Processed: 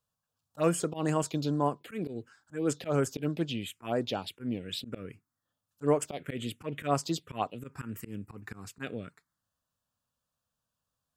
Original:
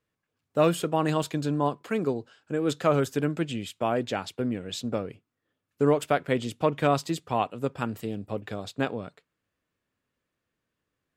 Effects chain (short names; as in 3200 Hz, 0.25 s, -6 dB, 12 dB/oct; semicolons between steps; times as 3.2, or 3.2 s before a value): auto swell 0.105 s; high shelf 2300 Hz +6.5 dB; envelope phaser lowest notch 360 Hz, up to 3800 Hz, full sweep at -21 dBFS; gain -2.5 dB